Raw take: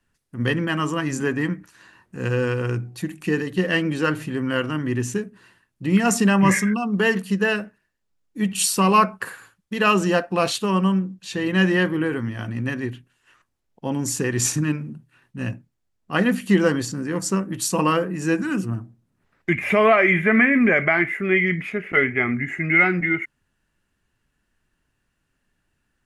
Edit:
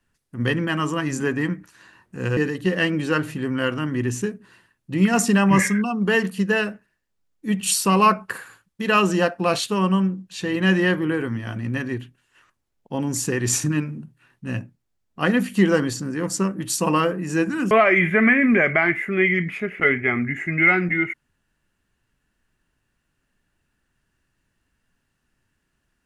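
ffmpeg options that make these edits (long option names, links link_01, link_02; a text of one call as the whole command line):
ffmpeg -i in.wav -filter_complex "[0:a]asplit=3[link_01][link_02][link_03];[link_01]atrim=end=2.372[link_04];[link_02]atrim=start=3.288:end=18.632[link_05];[link_03]atrim=start=19.828[link_06];[link_04][link_05]acrossfade=duration=0.004:curve1=hsin:curve2=hsin[link_07];[link_07][link_06]acrossfade=duration=0.004:curve1=hsin:curve2=hsin" out.wav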